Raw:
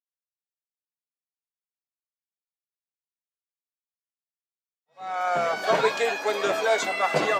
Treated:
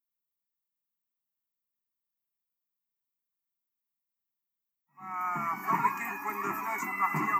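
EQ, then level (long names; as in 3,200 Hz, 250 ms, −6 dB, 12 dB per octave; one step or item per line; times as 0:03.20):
drawn EQ curve 100 Hz 0 dB, 200 Hz +9 dB, 400 Hz +3 dB, 570 Hz −28 dB, 970 Hz +2 dB, 1,700 Hz +3 dB, 4,200 Hz −27 dB, 7,100 Hz −6 dB, 13,000 Hz +13 dB
dynamic equaliser 180 Hz, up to −6 dB, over −41 dBFS, Q 0.97
phaser with its sweep stopped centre 2,300 Hz, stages 8
0.0 dB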